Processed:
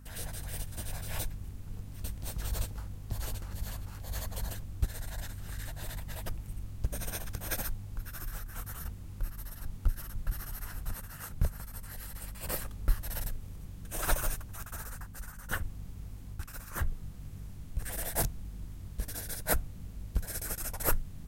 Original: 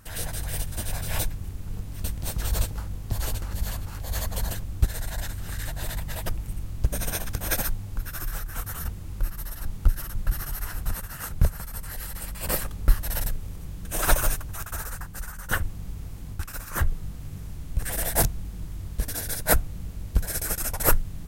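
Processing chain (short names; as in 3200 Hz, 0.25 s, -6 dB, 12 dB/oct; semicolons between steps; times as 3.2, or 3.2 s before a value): hum 50 Hz, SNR 16 dB; gain -8.5 dB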